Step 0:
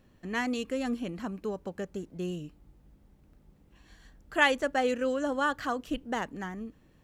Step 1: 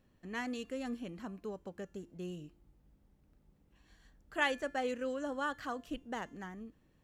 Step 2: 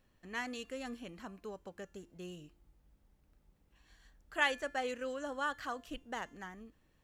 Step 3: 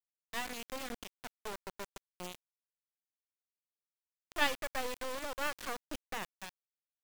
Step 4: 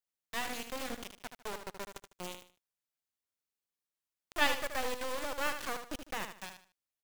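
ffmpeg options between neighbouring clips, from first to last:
-af "bandreject=f=347.1:t=h:w=4,bandreject=f=694.2:t=h:w=4,bandreject=f=1041.3:t=h:w=4,bandreject=f=1388.4:t=h:w=4,bandreject=f=1735.5:t=h:w=4,bandreject=f=2082.6:t=h:w=4,bandreject=f=2429.7:t=h:w=4,bandreject=f=2776.8:t=h:w=4,bandreject=f=3123.9:t=h:w=4,bandreject=f=3471:t=h:w=4,bandreject=f=3818.1:t=h:w=4,bandreject=f=4165.2:t=h:w=4,bandreject=f=4512.3:t=h:w=4,bandreject=f=4859.4:t=h:w=4,bandreject=f=5206.5:t=h:w=4,bandreject=f=5553.6:t=h:w=4,bandreject=f=5900.7:t=h:w=4,bandreject=f=6247.8:t=h:w=4,bandreject=f=6594.9:t=h:w=4,bandreject=f=6942:t=h:w=4,bandreject=f=7289.1:t=h:w=4,bandreject=f=7636.2:t=h:w=4,bandreject=f=7983.3:t=h:w=4,bandreject=f=8330.4:t=h:w=4,bandreject=f=8677.5:t=h:w=4,bandreject=f=9024.6:t=h:w=4,bandreject=f=9371.7:t=h:w=4,bandreject=f=9718.8:t=h:w=4,bandreject=f=10065.9:t=h:w=4,bandreject=f=10413:t=h:w=4,bandreject=f=10760.1:t=h:w=4,bandreject=f=11107.2:t=h:w=4,bandreject=f=11454.3:t=h:w=4,bandreject=f=11801.4:t=h:w=4,bandreject=f=12148.5:t=h:w=4,bandreject=f=12495.6:t=h:w=4,volume=0.398"
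-af "equalizer=f=200:w=0.41:g=-7.5,volume=1.26"
-af "acrusher=bits=4:dc=4:mix=0:aa=0.000001,volume=1.41"
-af "aecho=1:1:76|152|228:0.398|0.111|0.0312,volume=1.19"

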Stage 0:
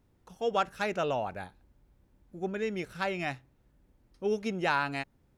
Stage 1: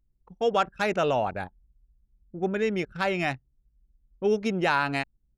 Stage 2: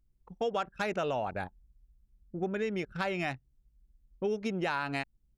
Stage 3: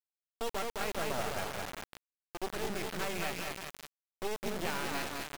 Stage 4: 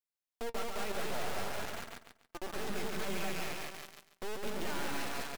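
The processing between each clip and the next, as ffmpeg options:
-filter_complex "[0:a]anlmdn=0.0631,asplit=2[s0][s1];[s1]alimiter=level_in=1.06:limit=0.0631:level=0:latency=1:release=75,volume=0.944,volume=1[s2];[s0][s2]amix=inputs=2:normalize=0,volume=1.12"
-af "acompressor=threshold=0.0282:ratio=3"
-filter_complex "[0:a]asplit=2[s0][s1];[s1]aecho=0:1:210|399|569.1|722.2|860:0.631|0.398|0.251|0.158|0.1[s2];[s0][s2]amix=inputs=2:normalize=0,acrusher=bits=3:dc=4:mix=0:aa=0.000001,volume=0.841"
-filter_complex "[0:a]flanger=delay=3.2:depth=2.5:regen=69:speed=0.43:shape=triangular,aeval=exprs='clip(val(0),-1,0.0237)':c=same,asplit=2[s0][s1];[s1]aecho=0:1:140|280|420|560:0.631|0.17|0.046|0.0124[s2];[s0][s2]amix=inputs=2:normalize=0,volume=1.26"

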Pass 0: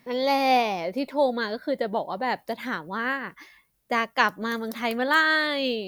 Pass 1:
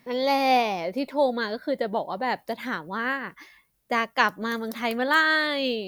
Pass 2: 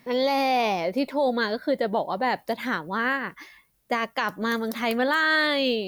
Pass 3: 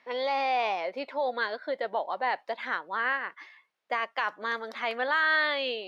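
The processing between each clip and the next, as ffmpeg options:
-af anull
-af "alimiter=limit=0.133:level=0:latency=1:release=17,volume=1.41"
-af "highpass=630,lowpass=3300,volume=0.794"

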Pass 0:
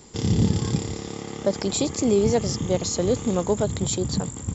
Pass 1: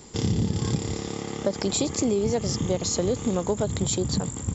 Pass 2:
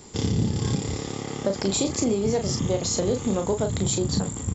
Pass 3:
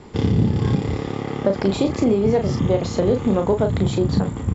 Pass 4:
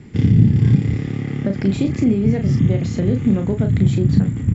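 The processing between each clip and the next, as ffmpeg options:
-af "acompressor=threshold=0.0794:ratio=6,volume=1.19"
-filter_complex "[0:a]asplit=2[s0][s1];[s1]adelay=36,volume=0.501[s2];[s0][s2]amix=inputs=2:normalize=0"
-af "lowpass=2500,volume=2"
-af "equalizer=f=125:t=o:w=1:g=10,equalizer=f=250:t=o:w=1:g=5,equalizer=f=500:t=o:w=1:g=-6,equalizer=f=1000:t=o:w=1:g=-12,equalizer=f=2000:t=o:w=1:g=7,equalizer=f=4000:t=o:w=1:g=-5,volume=0.794"

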